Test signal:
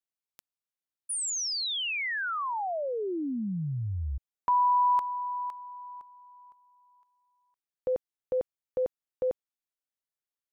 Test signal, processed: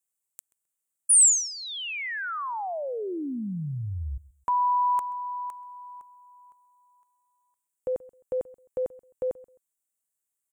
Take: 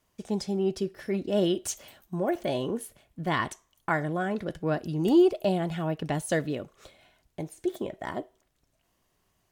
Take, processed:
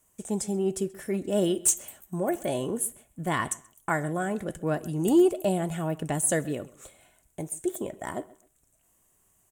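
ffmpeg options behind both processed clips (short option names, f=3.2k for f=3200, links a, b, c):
-filter_complex "[0:a]highshelf=f=6.2k:t=q:w=3:g=9.5,aeval=exprs='0.237*(abs(mod(val(0)/0.237+3,4)-2)-1)':c=same,asplit=2[a][b];[b]adelay=131,lowpass=f=3.9k:p=1,volume=-20.5dB,asplit=2[c][d];[d]adelay=131,lowpass=f=3.9k:p=1,volume=0.25[e];[a][c][e]amix=inputs=3:normalize=0"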